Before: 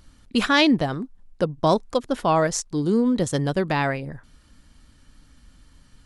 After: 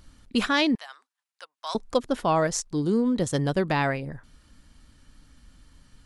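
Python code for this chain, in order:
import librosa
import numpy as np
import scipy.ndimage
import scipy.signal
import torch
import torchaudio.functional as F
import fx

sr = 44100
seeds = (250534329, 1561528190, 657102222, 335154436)

y = fx.bessel_highpass(x, sr, hz=1500.0, order=4, at=(0.75, 1.75))
y = fx.rider(y, sr, range_db=3, speed_s=0.5)
y = y * 10.0 ** (-2.5 / 20.0)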